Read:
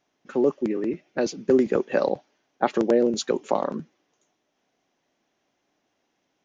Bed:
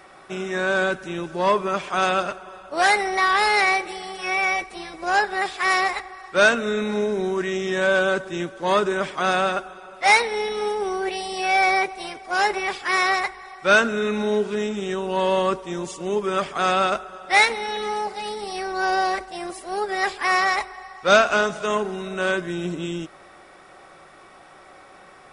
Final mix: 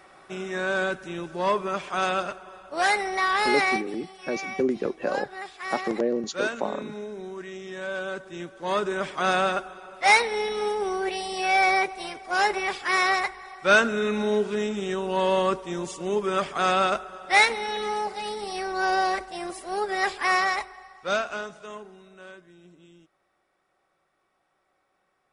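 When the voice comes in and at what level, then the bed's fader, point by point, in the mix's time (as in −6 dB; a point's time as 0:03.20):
3.10 s, −5.5 dB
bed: 0:03.72 −4.5 dB
0:03.95 −13 dB
0:07.88 −13 dB
0:09.28 −2 dB
0:20.30 −2 dB
0:22.53 −25 dB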